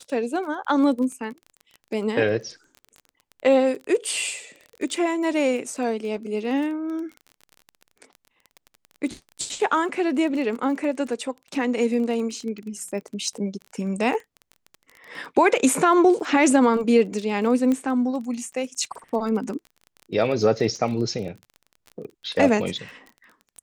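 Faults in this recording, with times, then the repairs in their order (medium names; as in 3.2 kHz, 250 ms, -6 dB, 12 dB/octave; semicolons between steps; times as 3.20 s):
crackle 24 per s -32 dBFS
17.72 s: pop -14 dBFS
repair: de-click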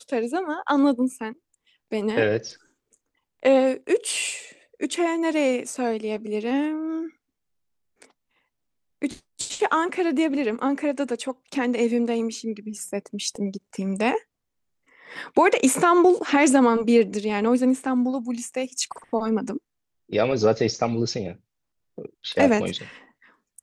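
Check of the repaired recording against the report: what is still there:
nothing left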